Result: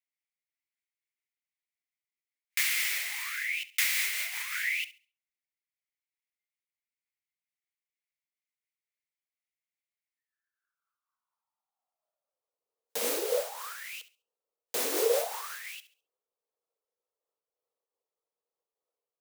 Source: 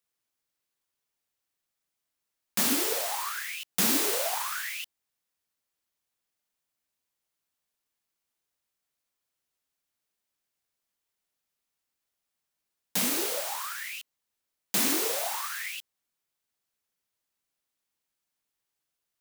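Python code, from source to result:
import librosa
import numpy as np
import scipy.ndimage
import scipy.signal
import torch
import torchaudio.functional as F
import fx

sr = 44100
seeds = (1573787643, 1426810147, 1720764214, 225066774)

y = fx.filter_sweep_highpass(x, sr, from_hz=2100.0, to_hz=470.0, start_s=10.09, end_s=12.58, q=6.4)
y = fx.echo_thinned(y, sr, ms=69, feedback_pct=28, hz=840.0, wet_db=-15.0)
y = fx.noise_reduce_blind(y, sr, reduce_db=12)
y = fx.am_noise(y, sr, seeds[0], hz=5.7, depth_pct=65)
y = y * librosa.db_to_amplitude(-1.5)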